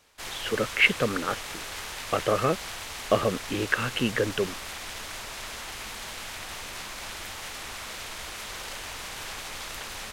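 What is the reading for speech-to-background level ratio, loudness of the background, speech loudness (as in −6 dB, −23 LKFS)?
9.0 dB, −36.0 LKFS, −27.0 LKFS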